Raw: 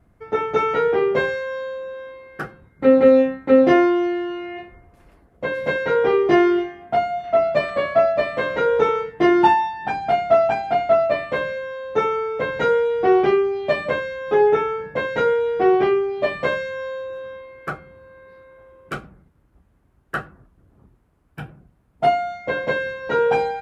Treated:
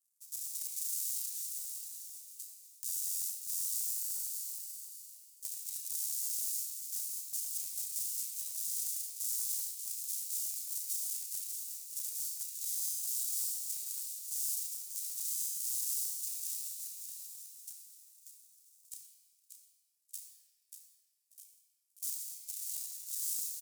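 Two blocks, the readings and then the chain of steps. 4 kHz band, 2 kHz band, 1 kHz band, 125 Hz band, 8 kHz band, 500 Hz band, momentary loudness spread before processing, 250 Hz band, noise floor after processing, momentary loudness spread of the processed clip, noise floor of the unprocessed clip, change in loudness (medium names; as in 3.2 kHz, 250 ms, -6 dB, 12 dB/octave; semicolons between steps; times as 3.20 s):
-9.5 dB, under -40 dB, under -40 dB, under -40 dB, no reading, under -40 dB, 17 LU, under -40 dB, -74 dBFS, 14 LU, -60 dBFS, -16.0 dB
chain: cycle switcher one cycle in 3, inverted; inverse Chebyshev high-pass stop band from 1.3 kHz, stop band 80 dB; peak limiter -18 dBFS, peak gain reduction 12 dB; doubling 32 ms -9 dB; feedback delay 587 ms, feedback 18%, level -7 dB; simulated room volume 3800 m³, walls mixed, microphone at 3.2 m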